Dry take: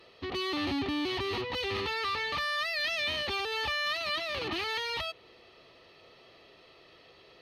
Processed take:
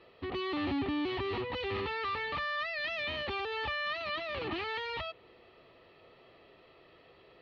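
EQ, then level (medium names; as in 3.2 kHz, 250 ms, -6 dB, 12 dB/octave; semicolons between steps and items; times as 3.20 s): distance through air 310 m; 0.0 dB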